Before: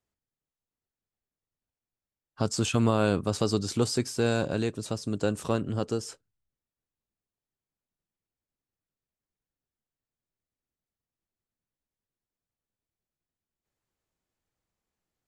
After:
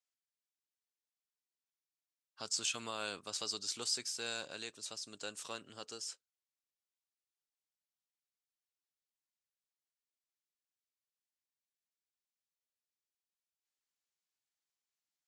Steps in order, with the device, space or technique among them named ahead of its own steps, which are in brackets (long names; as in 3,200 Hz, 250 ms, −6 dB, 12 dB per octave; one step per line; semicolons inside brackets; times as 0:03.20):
piezo pickup straight into a mixer (low-pass filter 5,800 Hz 12 dB per octave; first difference)
level +3.5 dB